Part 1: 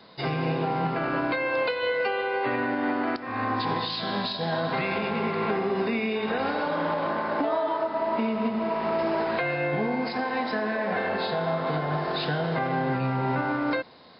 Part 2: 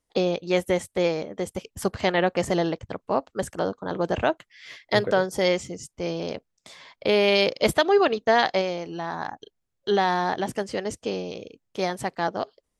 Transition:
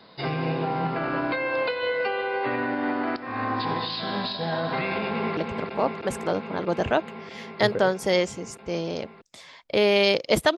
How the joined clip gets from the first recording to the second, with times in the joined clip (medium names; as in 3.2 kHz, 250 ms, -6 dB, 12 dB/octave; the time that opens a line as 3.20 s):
part 1
5.06–5.37 s: echo throw 320 ms, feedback 85%, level -5 dB
5.37 s: go over to part 2 from 2.69 s